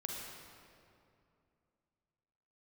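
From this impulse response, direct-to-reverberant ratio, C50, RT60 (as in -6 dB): -1.5 dB, -0.5 dB, 2.6 s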